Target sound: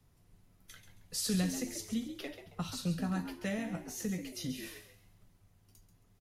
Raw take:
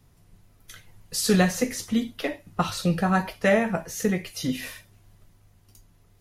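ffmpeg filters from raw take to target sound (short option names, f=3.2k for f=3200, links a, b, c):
-filter_complex "[0:a]acrossover=split=240|3000[a][b][c];[b]acompressor=threshold=-42dB:ratio=2[d];[a][d][c]amix=inputs=3:normalize=0,asplit=4[e][f][g][h];[f]adelay=136,afreqshift=82,volume=-10dB[i];[g]adelay=272,afreqshift=164,volume=-20.2dB[j];[h]adelay=408,afreqshift=246,volume=-30.3dB[k];[e][i][j][k]amix=inputs=4:normalize=0,volume=-8.5dB"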